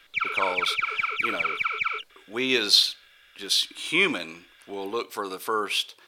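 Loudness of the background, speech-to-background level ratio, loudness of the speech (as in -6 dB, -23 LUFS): -26.5 LUFS, 1.5 dB, -25.0 LUFS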